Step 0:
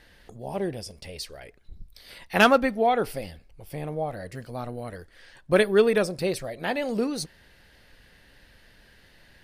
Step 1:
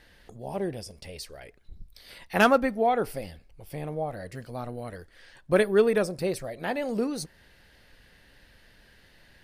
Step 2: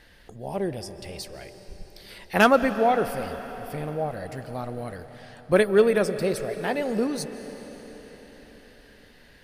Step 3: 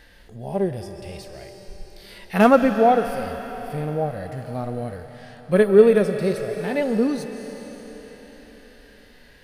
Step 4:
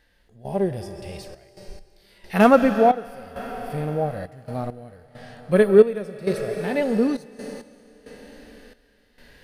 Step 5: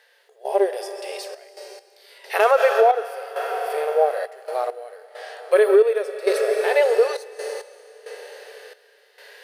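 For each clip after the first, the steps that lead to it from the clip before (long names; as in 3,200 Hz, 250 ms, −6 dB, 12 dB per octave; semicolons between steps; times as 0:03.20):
dynamic equaliser 3,400 Hz, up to −5 dB, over −45 dBFS, Q 1; level −1.5 dB
comb and all-pass reverb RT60 5 s, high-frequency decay 0.95×, pre-delay 110 ms, DRR 11 dB; level +2.5 dB
harmonic and percussive parts rebalanced percussive −15 dB; level +6.5 dB
gate pattern "..xxxx.x..xxx" 67 BPM −12 dB
linear-phase brick-wall high-pass 380 Hz; brickwall limiter −14.5 dBFS, peak gain reduction 11.5 dB; level +7.5 dB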